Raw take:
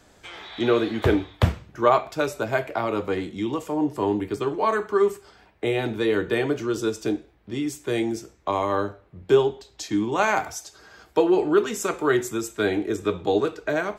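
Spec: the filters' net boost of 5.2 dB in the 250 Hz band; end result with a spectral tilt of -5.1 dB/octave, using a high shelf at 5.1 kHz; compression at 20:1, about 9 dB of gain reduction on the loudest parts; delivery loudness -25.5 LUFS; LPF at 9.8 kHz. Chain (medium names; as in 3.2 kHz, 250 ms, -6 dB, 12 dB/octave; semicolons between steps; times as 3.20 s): low-pass 9.8 kHz; peaking EQ 250 Hz +7.5 dB; treble shelf 5.1 kHz +3 dB; compression 20:1, threshold -19 dBFS; trim +0.5 dB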